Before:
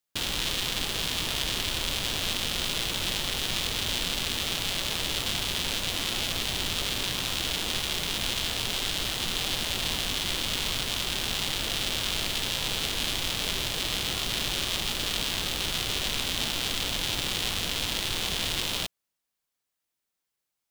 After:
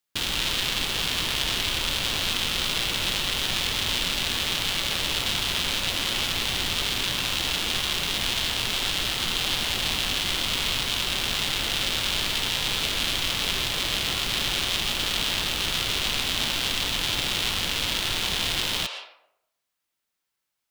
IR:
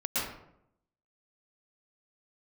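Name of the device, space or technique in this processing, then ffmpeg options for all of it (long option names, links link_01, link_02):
filtered reverb send: -filter_complex "[0:a]asplit=2[link_01][link_02];[link_02]highpass=frequency=560:width=0.5412,highpass=frequency=560:width=1.3066,lowpass=5200[link_03];[1:a]atrim=start_sample=2205[link_04];[link_03][link_04]afir=irnorm=-1:irlink=0,volume=-10.5dB[link_05];[link_01][link_05]amix=inputs=2:normalize=0,volume=1.5dB"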